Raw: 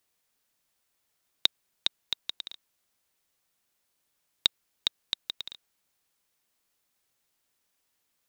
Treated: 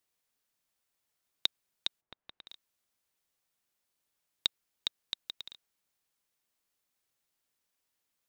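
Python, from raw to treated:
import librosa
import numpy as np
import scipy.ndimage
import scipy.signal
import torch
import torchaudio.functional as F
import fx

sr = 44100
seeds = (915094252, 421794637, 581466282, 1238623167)

y = fx.lowpass(x, sr, hz=fx.line((2.0, 1100.0), (2.46, 2500.0)), slope=12, at=(2.0, 2.46), fade=0.02)
y = y * 10.0 ** (-6.0 / 20.0)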